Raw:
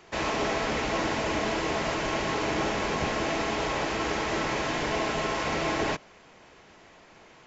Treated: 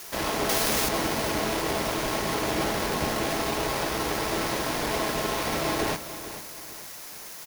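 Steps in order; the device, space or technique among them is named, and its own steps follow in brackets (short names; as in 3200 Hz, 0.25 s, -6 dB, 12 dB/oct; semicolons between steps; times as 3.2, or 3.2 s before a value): budget class-D amplifier (switching dead time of 0.19 ms; switching spikes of -27 dBFS); 0.49–0.89 high shelf 3700 Hz +10.5 dB; feedback echo 0.446 s, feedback 37%, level -13 dB; gain +1.5 dB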